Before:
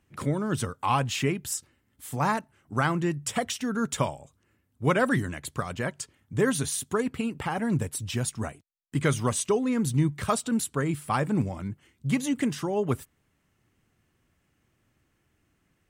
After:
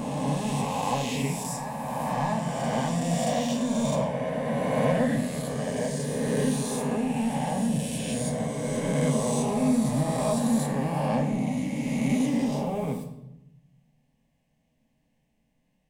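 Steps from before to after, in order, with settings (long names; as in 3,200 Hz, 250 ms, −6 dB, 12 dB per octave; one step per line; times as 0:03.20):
peak hold with a rise ahead of every peak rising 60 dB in 2.74 s
high-shelf EQ 3,200 Hz −9 dB
phaser with its sweep stopped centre 360 Hz, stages 6
in parallel at −8 dB: hard clipping −26.5 dBFS, distortion −9 dB
on the sum: backwards echo 628 ms −8.5 dB
on a send at −2.5 dB: convolution reverb RT60 0.85 s, pre-delay 8 ms
on the sum: level −5.5 dB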